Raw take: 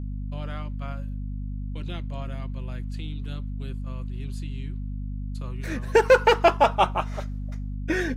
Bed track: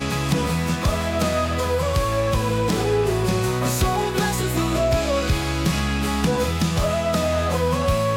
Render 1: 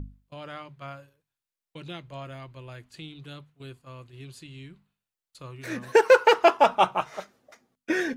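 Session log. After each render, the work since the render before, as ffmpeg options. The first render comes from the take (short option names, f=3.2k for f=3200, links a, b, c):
-af "bandreject=f=50:t=h:w=6,bandreject=f=100:t=h:w=6,bandreject=f=150:t=h:w=6,bandreject=f=200:t=h:w=6,bandreject=f=250:t=h:w=6"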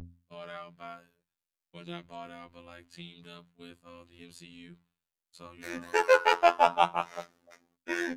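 -filter_complex "[0:a]acrossover=split=530|2700[a][b][c];[a]asoftclip=type=tanh:threshold=-30dB[d];[d][b][c]amix=inputs=3:normalize=0,afftfilt=real='hypot(re,im)*cos(PI*b)':imag='0':win_size=2048:overlap=0.75"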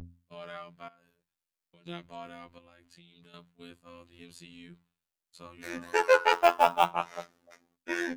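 -filter_complex "[0:a]asettb=1/sr,asplit=3[a][b][c];[a]atrim=end=0.884[d];[b]atrim=start=0.88:end=1.86,asetpts=PTS-STARTPTS,afade=t=in:d=0.004:c=qsin,afade=t=out:st=0.976:d=0.004:c=qsin,acompressor=threshold=-57dB:ratio=6:attack=3.2:release=140:knee=1:detection=peak[e];[c]atrim=start=1.856[f];[d][e]acrossfade=d=0.004:c1=hsin:c2=qsin[g];[g][f]acrossfade=d=0.004:c1=qsin:c2=hsin,asettb=1/sr,asplit=3[h][i][j];[h]atrim=end=2.584[k];[i]atrim=start=2.58:end=3.34,asetpts=PTS-STARTPTS,afade=t=in:d=0.004:c=qsin,afade=t=out:st=0.756:d=0.004:c=qsin,acompressor=threshold=-53dB:ratio=5:attack=3.2:release=140:knee=1:detection=peak[l];[j]atrim=start=3.336[m];[k][l]acrossfade=d=0.004:c1=hsin:c2=qsin[n];[n][m]acrossfade=d=0.004:c1=qsin:c2=hsin,asettb=1/sr,asplit=3[o][p][q];[o]atrim=end=6.334[r];[p]atrim=start=6.33:end=6.91,asetpts=PTS-STARTPTS,afade=t=in:d=0.004:c=qsin,afade=t=out:st=0.576:d=0.004:c=qsin,acrusher=bits=6:mode=log:mix=0:aa=0.000001[s];[q]atrim=start=6.906[t];[r][s]acrossfade=d=0.004:c1=hsin:c2=qsin[u];[u][t]acrossfade=d=0.004:c1=qsin:c2=hsin"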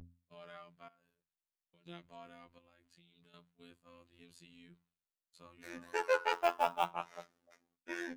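-af "volume=-9.5dB"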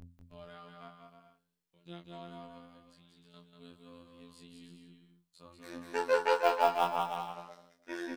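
-filter_complex "[0:a]asplit=2[a][b];[b]adelay=23,volume=-4dB[c];[a][c]amix=inputs=2:normalize=0,asplit=2[d][e];[e]aecho=0:1:190|313.5|393.8|446|479.9:0.631|0.398|0.251|0.158|0.1[f];[d][f]amix=inputs=2:normalize=0"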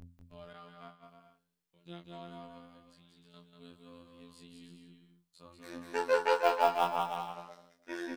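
-filter_complex "[0:a]asettb=1/sr,asplit=3[a][b][c];[a]atrim=end=0.534[d];[b]atrim=start=0.53:end=1.03,asetpts=PTS-STARTPTS,afade=t=in:d=0.004:c=qsin,afade=t=out:st=0.496:d=0.004:c=qsin,agate=range=-33dB:threshold=-52dB:ratio=3:release=100:detection=peak[e];[c]atrim=start=1.026[f];[d][e]acrossfade=d=0.004:c1=hsin:c2=qsin[g];[g][f]acrossfade=d=0.004:c1=qsin:c2=hsin"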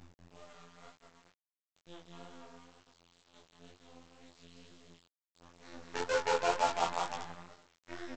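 -af "aresample=16000,acrusher=bits=6:dc=4:mix=0:aa=0.000001,aresample=44100,flanger=delay=19.5:depth=4.7:speed=2.1"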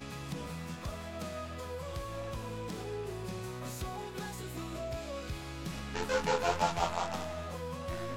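-filter_complex "[1:a]volume=-19dB[a];[0:a][a]amix=inputs=2:normalize=0"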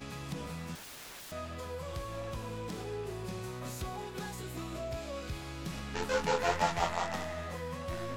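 -filter_complex "[0:a]asettb=1/sr,asplit=3[a][b][c];[a]atrim=end=0.754[d];[b]atrim=start=0.75:end=1.32,asetpts=PTS-STARTPTS,afade=t=in:d=0.004:c=qsin,afade=t=out:st=0.566:d=0.004:c=qsin,aeval=exprs='(mod(141*val(0)+1,2)-1)/141':c=same[e];[c]atrim=start=1.316[f];[d][e]acrossfade=d=0.004:c1=hsin:c2=qsin[g];[g][f]acrossfade=d=0.004:c1=qsin:c2=hsin,asettb=1/sr,asplit=3[h][i][j];[h]atrim=end=6.384[k];[i]atrim=start=6.38:end=7.84,asetpts=PTS-STARTPTS,afade=t=in:d=0.004:c=qsin,afade=t=out:st=1.456:d=0.004:c=qsin,equalizer=f=1.9k:t=o:w=0.23:g=10[l];[j]atrim=start=7.836[m];[k][l]acrossfade=d=0.004:c1=hsin:c2=qsin[n];[n][m]acrossfade=d=0.004:c1=qsin:c2=hsin"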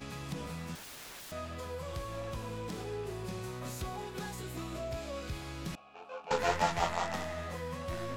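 -filter_complex "[0:a]asettb=1/sr,asplit=3[a][b][c];[a]atrim=end=5.754[d];[b]atrim=start=5.75:end=6.31,asetpts=PTS-STARTPTS,afade=t=in:d=0.004:c=qsin,afade=t=out:st=0.556:d=0.004:c=qsin,asplit=3[e][f][g];[e]bandpass=f=730:t=q:w=8,volume=0dB[h];[f]bandpass=f=1.09k:t=q:w=8,volume=-6dB[i];[g]bandpass=f=2.44k:t=q:w=8,volume=-9dB[j];[h][i][j]amix=inputs=3:normalize=0[k];[c]atrim=start=6.306[l];[d][k]acrossfade=d=0.004:c1=hsin:c2=qsin[m];[m][l]acrossfade=d=0.004:c1=qsin:c2=hsin"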